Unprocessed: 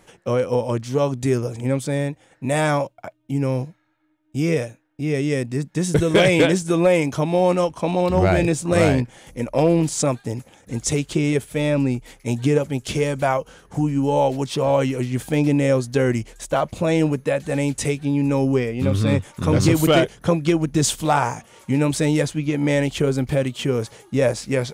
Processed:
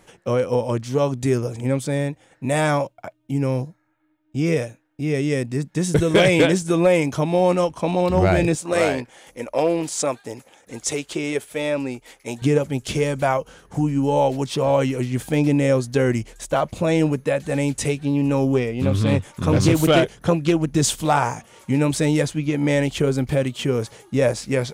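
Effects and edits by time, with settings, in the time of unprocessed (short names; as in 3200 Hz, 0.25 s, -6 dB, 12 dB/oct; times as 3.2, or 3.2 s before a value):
3.6–4.45 bell 2100 Hz -> 13000 Hz -14 dB
8.55–12.42 tone controls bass -15 dB, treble -1 dB
17.84–20.71 Doppler distortion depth 0.17 ms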